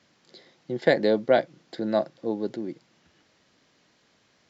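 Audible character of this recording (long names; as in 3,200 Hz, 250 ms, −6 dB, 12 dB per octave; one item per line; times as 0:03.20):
background noise floor −65 dBFS
spectral slope −4.0 dB per octave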